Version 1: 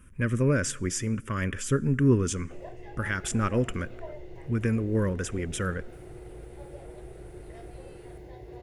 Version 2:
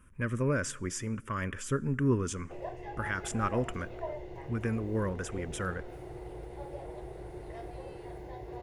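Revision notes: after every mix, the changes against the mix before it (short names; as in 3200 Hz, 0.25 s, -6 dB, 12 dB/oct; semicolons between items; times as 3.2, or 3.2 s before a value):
speech -6.5 dB; master: add bell 950 Hz +7.5 dB 1.2 oct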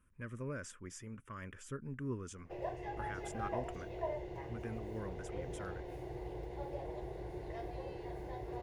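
speech -11.5 dB; reverb: off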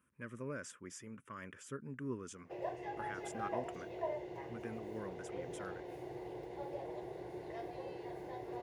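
master: add HPF 160 Hz 12 dB/oct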